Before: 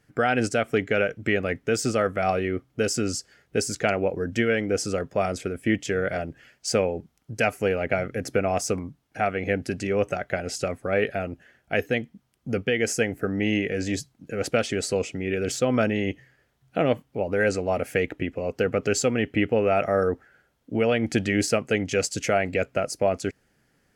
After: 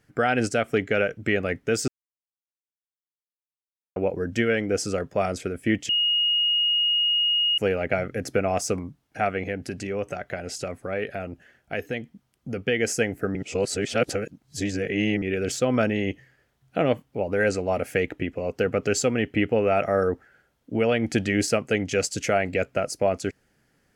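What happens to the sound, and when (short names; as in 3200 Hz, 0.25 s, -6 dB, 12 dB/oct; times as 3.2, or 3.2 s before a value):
1.88–3.96 mute
5.89–7.58 bleep 2870 Hz -19 dBFS
9.43–12.67 compressor 1.5:1, threshold -33 dBFS
13.35–15.22 reverse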